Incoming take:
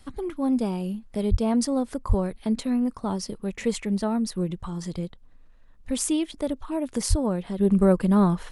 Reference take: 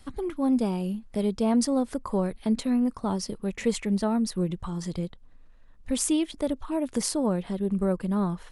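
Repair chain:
0:01.30–0:01.42: high-pass filter 140 Hz 24 dB per octave
0:02.08–0:02.20: high-pass filter 140 Hz 24 dB per octave
0:07.09–0:07.21: high-pass filter 140 Hz 24 dB per octave
level 0 dB, from 0:07.59 −7 dB

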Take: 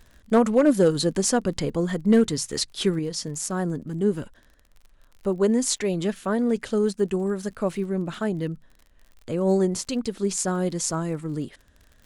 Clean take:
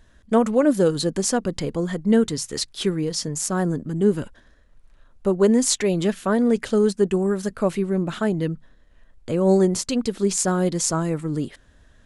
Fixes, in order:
clipped peaks rebuilt −10 dBFS
click removal
level correction +4 dB, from 0:02.99

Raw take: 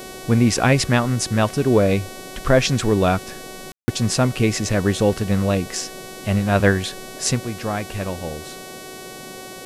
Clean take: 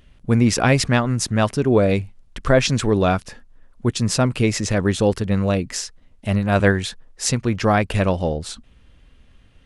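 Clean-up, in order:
hum removal 374.4 Hz, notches 36
ambience match 0:03.72–0:03.88
noise reduction from a noise print 13 dB
level 0 dB, from 0:07.41 +8 dB

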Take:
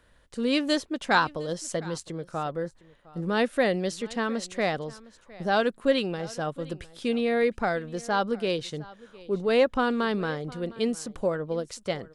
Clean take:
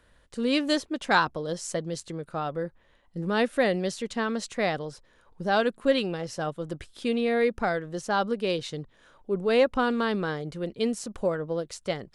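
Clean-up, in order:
echo removal 709 ms −21 dB

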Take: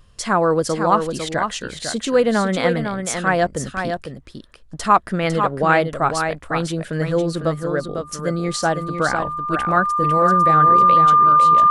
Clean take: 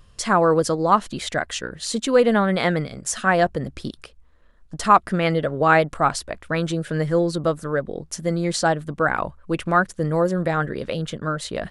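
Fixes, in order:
notch filter 1,200 Hz, Q 30
echo removal 502 ms −6.5 dB
level 0 dB, from 0:11.13 +4.5 dB

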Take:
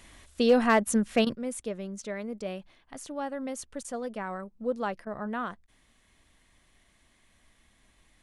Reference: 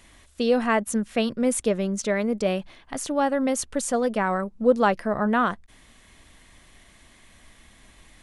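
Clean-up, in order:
clipped peaks rebuilt −13 dBFS
repair the gap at 0:01.25/0:03.83/0:05.05, 14 ms
level correction +11.5 dB, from 0:01.35

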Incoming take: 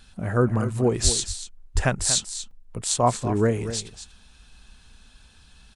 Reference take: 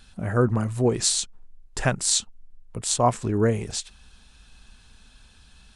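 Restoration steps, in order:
0:01.03–0:01.15: high-pass filter 140 Hz 24 dB per octave
0:01.74–0:01.86: high-pass filter 140 Hz 24 dB per octave
repair the gap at 0:02.51, 2.8 ms
echo removal 237 ms −11.5 dB

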